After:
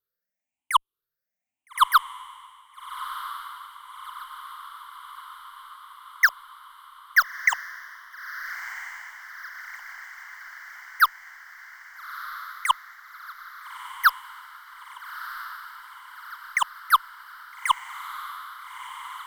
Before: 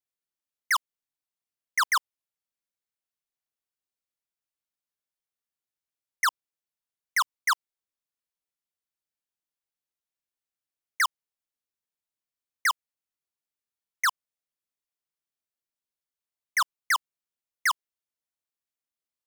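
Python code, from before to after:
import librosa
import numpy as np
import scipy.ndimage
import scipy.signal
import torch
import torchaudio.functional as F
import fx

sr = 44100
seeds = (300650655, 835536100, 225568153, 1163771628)

p1 = fx.spec_ripple(x, sr, per_octave=0.61, drift_hz=1.0, depth_db=22)
p2 = fx.band_shelf(p1, sr, hz=6300.0, db=-8.5, octaves=1.7)
p3 = fx.cheby_harmonics(p2, sr, harmonics=(2,), levels_db=(-33,), full_scale_db=-7.5)
y = p3 + fx.echo_diffused(p3, sr, ms=1303, feedback_pct=66, wet_db=-12.0, dry=0)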